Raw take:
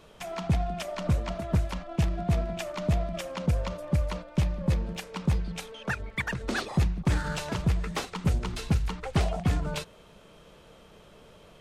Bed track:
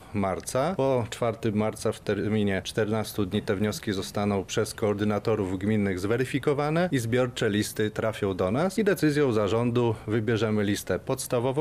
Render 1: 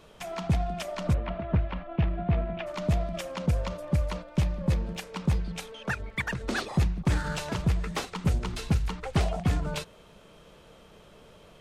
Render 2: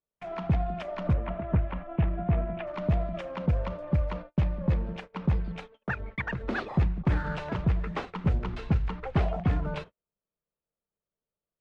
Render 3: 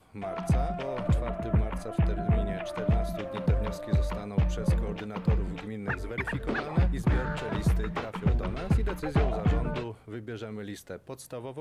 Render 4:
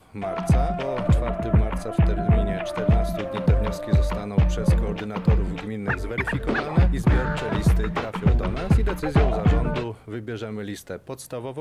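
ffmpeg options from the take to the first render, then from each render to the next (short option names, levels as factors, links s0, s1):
-filter_complex "[0:a]asplit=3[s0][s1][s2];[s0]afade=t=out:st=1.13:d=0.02[s3];[s1]lowpass=f=3000:w=0.5412,lowpass=f=3000:w=1.3066,afade=t=in:st=1.13:d=0.02,afade=t=out:st=2.66:d=0.02[s4];[s2]afade=t=in:st=2.66:d=0.02[s5];[s3][s4][s5]amix=inputs=3:normalize=0"
-af "lowpass=2200,agate=range=0.00794:threshold=0.00891:ratio=16:detection=peak"
-filter_complex "[1:a]volume=0.224[s0];[0:a][s0]amix=inputs=2:normalize=0"
-af "volume=2.11"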